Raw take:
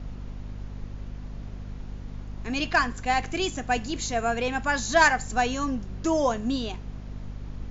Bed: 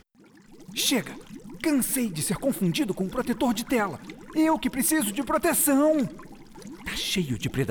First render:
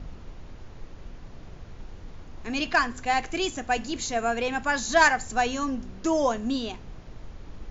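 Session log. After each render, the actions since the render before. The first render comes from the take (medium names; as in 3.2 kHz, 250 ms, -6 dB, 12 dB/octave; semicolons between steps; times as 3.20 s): de-hum 50 Hz, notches 5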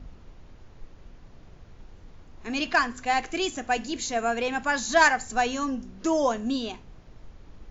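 noise print and reduce 6 dB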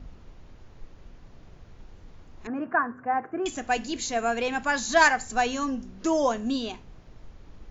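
2.47–3.46 s: elliptic band-pass 110–1500 Hz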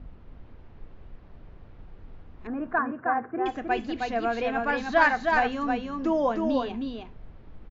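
distance through air 310 m; on a send: delay 313 ms -4 dB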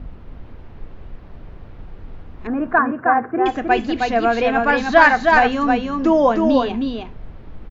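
trim +10 dB; peak limiter -2 dBFS, peak gain reduction 2 dB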